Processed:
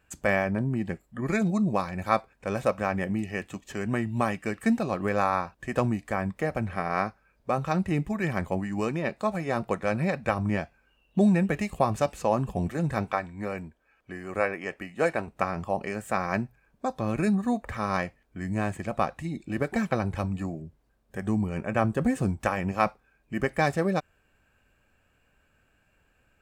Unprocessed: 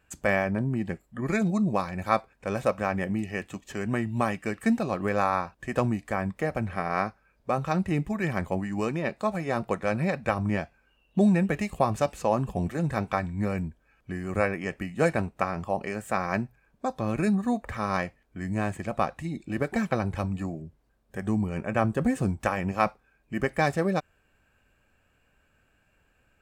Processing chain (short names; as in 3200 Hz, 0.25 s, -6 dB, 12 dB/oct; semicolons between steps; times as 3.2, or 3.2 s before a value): 13.11–15.28 tone controls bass -11 dB, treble -4 dB